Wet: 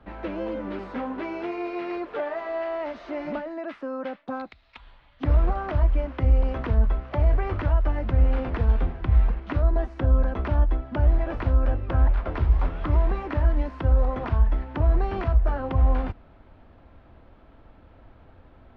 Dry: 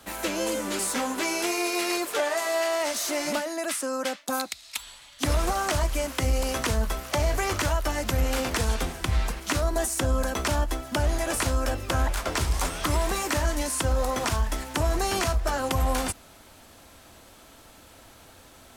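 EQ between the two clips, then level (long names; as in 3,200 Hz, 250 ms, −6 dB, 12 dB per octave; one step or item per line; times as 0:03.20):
high-frequency loss of the air 320 metres
head-to-tape spacing loss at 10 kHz 28 dB
low-shelf EQ 86 Hz +10 dB
0.0 dB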